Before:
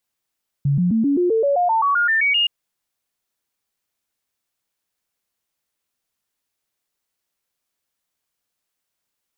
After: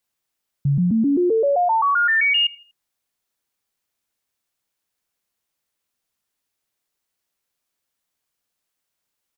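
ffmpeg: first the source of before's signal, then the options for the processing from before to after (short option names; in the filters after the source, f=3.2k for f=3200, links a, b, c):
-f lavfi -i "aevalsrc='0.188*clip(min(mod(t,0.13),0.13-mod(t,0.13))/0.005,0,1)*sin(2*PI*141*pow(2,floor(t/0.13)/3)*mod(t,0.13))':d=1.82:s=44100"
-af "aecho=1:1:81|162|243:0.075|0.0292|0.0114"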